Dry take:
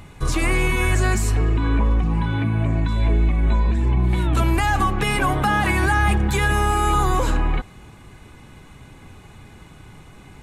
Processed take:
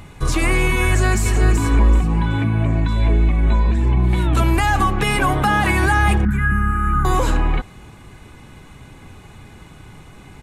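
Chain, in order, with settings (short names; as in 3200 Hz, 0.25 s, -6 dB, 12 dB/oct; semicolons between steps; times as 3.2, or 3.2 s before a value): 0.87–1.61 echo throw 0.38 s, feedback 25%, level -5.5 dB; 6.25–7.05 EQ curve 150 Hz 0 dB, 220 Hz +6 dB, 460 Hz -23 dB, 930 Hz -20 dB, 1400 Hz +5 dB, 4000 Hz -29 dB, 12000 Hz -14 dB; gain +2.5 dB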